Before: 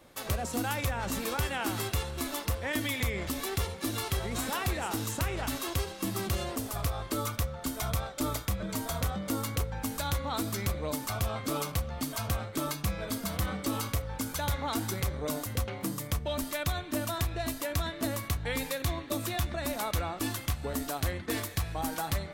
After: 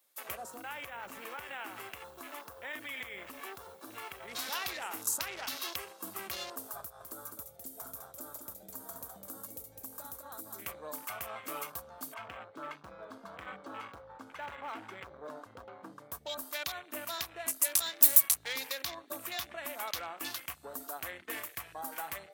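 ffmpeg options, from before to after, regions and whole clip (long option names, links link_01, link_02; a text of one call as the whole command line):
ffmpeg -i in.wav -filter_complex "[0:a]asettb=1/sr,asplit=3[link_01][link_02][link_03];[link_01]atrim=end=0.504[link_04];[link_02]atrim=start=0.5:end=4.28,asetpts=PTS-STARTPTS,afade=type=in:duration=0.004:curve=qsin,afade=type=out:start_time=3.776:duration=0.004:curve=qsin,aemphasis=mode=reproduction:type=cd,acompressor=threshold=-31dB:ratio=4:attack=3.2:release=140:knee=1:detection=peak,acrusher=bits=8:mix=0:aa=0.5[link_05];[link_03]atrim=start=4.276[link_06];[link_04][link_05]acrossfade=duration=0.004:curve1=hsin:curve2=qsin[link_07];[link_07][link_06]acrossfade=duration=0.004:curve1=qsin:curve2=hsin,asettb=1/sr,asplit=3[link_08][link_09][link_10];[link_08]atrim=end=6.804[link_11];[link_09]atrim=start=6.8:end=10.66,asetpts=PTS-STARTPTS,afade=type=in:duration=0.004:curve=qsin,afade=type=out:start_time=3.856:duration=0.004:curve=qsin,acrossover=split=2100|5800[link_12][link_13][link_14];[link_12]acompressor=threshold=-42dB:ratio=4[link_15];[link_13]acompressor=threshold=-56dB:ratio=4[link_16];[link_14]acompressor=threshold=-39dB:ratio=4[link_17];[link_15][link_16][link_17]amix=inputs=3:normalize=0,lowshelf=frequency=490:gain=7.5,aecho=1:1:205:0.531,atrim=end_sample=170226[link_18];[link_10]atrim=start=10.656[link_19];[link_11][link_18]acrossfade=duration=0.004:curve1=hsin:curve2=qsin[link_20];[link_20][link_19]acrossfade=duration=0.004:curve1=qsin:curve2=hsin,asettb=1/sr,asplit=3[link_21][link_22][link_23];[link_21]atrim=end=12.144[link_24];[link_22]atrim=start=12.14:end=16.12,asetpts=PTS-STARTPTS,afade=type=in:duration=0.004:curve=qsin,afade=type=out:start_time=3.976:duration=0.004:curve=qsin,lowpass=2700,asoftclip=type=hard:threshold=-28dB[link_25];[link_23]atrim=start=16.116[link_26];[link_24][link_25]acrossfade=duration=0.004:curve1=hsin:curve2=qsin[link_27];[link_27][link_26]acrossfade=duration=0.004:curve1=qsin:curve2=hsin,asettb=1/sr,asplit=3[link_28][link_29][link_30];[link_28]atrim=end=17.624[link_31];[link_29]atrim=start=17.62:end=18.53,asetpts=PTS-STARTPTS,afade=type=in:duration=0.004:curve=qsin,afade=type=out:start_time=0.906:duration=0.004:curve=qsin,aemphasis=mode=production:type=cd,aeval=exprs='clip(val(0),-1,0.0316)':channel_layout=same[link_32];[link_30]atrim=start=18.526[link_33];[link_31][link_32]acrossfade=duration=0.004:curve1=hsin:curve2=qsin[link_34];[link_34][link_33]acrossfade=duration=0.004:curve1=qsin:curve2=hsin,lowshelf=frequency=330:gain=-10,afwtdn=0.00794,aemphasis=mode=production:type=riaa,volume=-4dB" out.wav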